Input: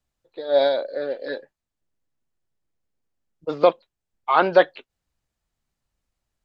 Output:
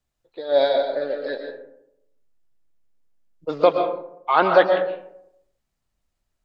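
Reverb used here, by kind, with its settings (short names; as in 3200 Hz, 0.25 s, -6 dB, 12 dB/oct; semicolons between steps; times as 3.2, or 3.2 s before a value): digital reverb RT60 0.78 s, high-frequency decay 0.4×, pre-delay 85 ms, DRR 4.5 dB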